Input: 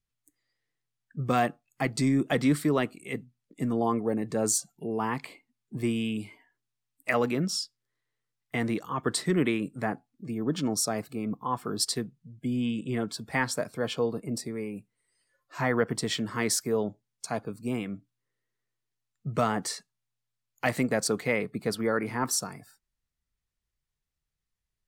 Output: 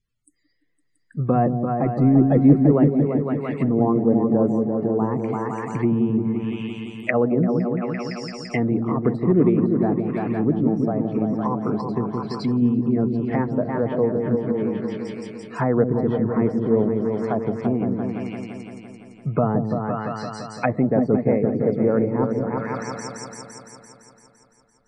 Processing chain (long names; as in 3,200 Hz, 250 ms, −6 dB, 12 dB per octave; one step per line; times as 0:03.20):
spectral peaks only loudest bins 64
echo whose low-pass opens from repeat to repeat 170 ms, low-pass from 400 Hz, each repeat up 2 octaves, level −3 dB
treble cut that deepens with the level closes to 670 Hz, closed at −25 dBFS
level +8 dB